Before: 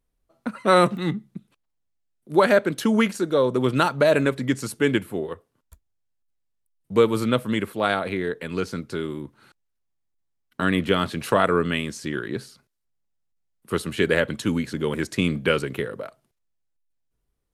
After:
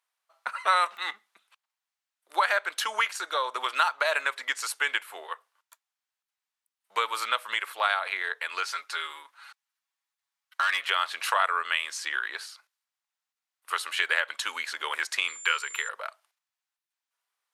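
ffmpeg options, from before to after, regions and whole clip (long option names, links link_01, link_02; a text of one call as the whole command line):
ffmpeg -i in.wav -filter_complex "[0:a]asettb=1/sr,asplit=3[link_01][link_02][link_03];[link_01]atrim=end=8.634[link_04];[link_02]atrim=start=8.63:end=10.9,asetpts=PTS-STARTPTS,afade=type=in:duration=0.004:curve=qsin,afade=type=out:start_time=2.266:duration=0.004:curve=qsin,highpass=frequency=610:poles=1,aecho=1:1:7.2:0.8,atrim=end_sample=100107,volume=18.5dB,asoftclip=hard,volume=-18.5dB[link_05];[link_03]atrim=start=10.896[link_06];[link_04][link_05]acrossfade=duration=0.004:curve1=hsin:curve2=qsin[link_07];[link_07][link_06]acrossfade=duration=0.004:curve1=qsin:curve2=hsin,asettb=1/sr,asplit=3[link_08][link_09][link_10];[link_08]atrim=end=15.284[link_11];[link_09]atrim=start=15.28:end=15.89,asetpts=PTS-STARTPTS,afade=type=in:duration=0.004:curve=qsin,afade=type=out:start_time=0.606:duration=0.004:curve=qsin,lowshelf=frequency=320:gain=-6,aeval=exprs='val(0)+0.00794*sin(2*PI*7200*n/s)':channel_layout=same,asuperstop=centerf=670:order=8:qfactor=2.2[link_12];[link_10]atrim=start=15.886[link_13];[link_11][link_12]acrossfade=duration=0.004:curve1=hsin:curve2=qsin[link_14];[link_14][link_13]acrossfade=duration=0.004:curve1=qsin:curve2=hsin,highpass=frequency=890:width=0.5412,highpass=frequency=890:width=1.3066,highshelf=frequency=7100:gain=-7.5,acompressor=threshold=-32dB:ratio=2,volume=6.5dB" out.wav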